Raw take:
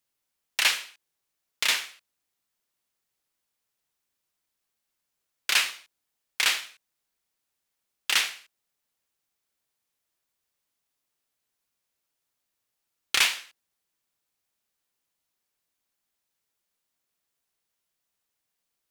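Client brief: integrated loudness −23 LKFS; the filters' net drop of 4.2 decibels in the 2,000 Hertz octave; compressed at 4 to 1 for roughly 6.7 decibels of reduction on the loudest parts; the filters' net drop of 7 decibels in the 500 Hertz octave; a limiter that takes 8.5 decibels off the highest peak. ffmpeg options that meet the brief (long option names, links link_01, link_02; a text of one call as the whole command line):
ffmpeg -i in.wav -af "equalizer=frequency=500:width_type=o:gain=-9,equalizer=frequency=2000:width_type=o:gain=-5,acompressor=threshold=-28dB:ratio=4,volume=14dB,alimiter=limit=-8dB:level=0:latency=1" out.wav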